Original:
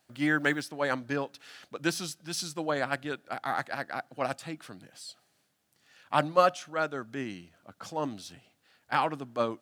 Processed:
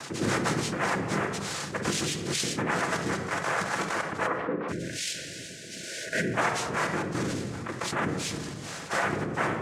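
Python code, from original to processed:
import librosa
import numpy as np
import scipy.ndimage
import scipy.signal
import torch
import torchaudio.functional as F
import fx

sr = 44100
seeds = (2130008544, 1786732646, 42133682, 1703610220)

y = fx.freq_compress(x, sr, knee_hz=1500.0, ratio=1.5)
y = fx.noise_vocoder(y, sr, seeds[0], bands=3)
y = fx.cabinet(y, sr, low_hz=180.0, low_slope=24, high_hz=2100.0, hz=(290.0, 510.0, 1100.0), db=(5, 10, 7), at=(4.26, 4.68), fade=0.02)
y = fx.room_shoebox(y, sr, seeds[1], volume_m3=2100.0, walls='furnished', distance_m=0.75)
y = fx.spec_box(y, sr, start_s=4.72, length_s=1.63, low_hz=670.0, high_hz=1400.0, gain_db=-29)
y = fx.env_flatten(y, sr, amount_pct=70)
y = F.gain(torch.from_numpy(y), -6.0).numpy()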